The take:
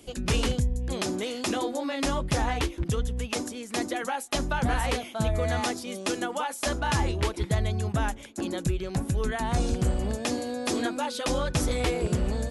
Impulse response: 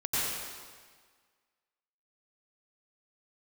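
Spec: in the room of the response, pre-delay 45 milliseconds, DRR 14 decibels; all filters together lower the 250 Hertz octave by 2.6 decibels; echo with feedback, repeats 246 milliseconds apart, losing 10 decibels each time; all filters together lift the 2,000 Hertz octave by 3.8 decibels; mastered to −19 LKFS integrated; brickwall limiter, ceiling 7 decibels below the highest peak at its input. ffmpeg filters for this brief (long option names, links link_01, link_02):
-filter_complex "[0:a]equalizer=frequency=250:width_type=o:gain=-3.5,equalizer=frequency=2000:width_type=o:gain=5,alimiter=limit=-20.5dB:level=0:latency=1,aecho=1:1:246|492|738|984:0.316|0.101|0.0324|0.0104,asplit=2[link_01][link_02];[1:a]atrim=start_sample=2205,adelay=45[link_03];[link_02][link_03]afir=irnorm=-1:irlink=0,volume=-23.5dB[link_04];[link_01][link_04]amix=inputs=2:normalize=0,volume=11.5dB"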